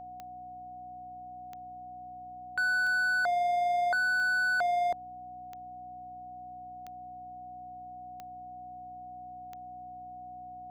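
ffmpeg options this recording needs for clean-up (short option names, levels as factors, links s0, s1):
-af "adeclick=t=4,bandreject=f=61.8:t=h:w=4,bandreject=f=123.6:t=h:w=4,bandreject=f=185.4:t=h:w=4,bandreject=f=247.2:t=h:w=4,bandreject=f=309:t=h:w=4,bandreject=f=730:w=30"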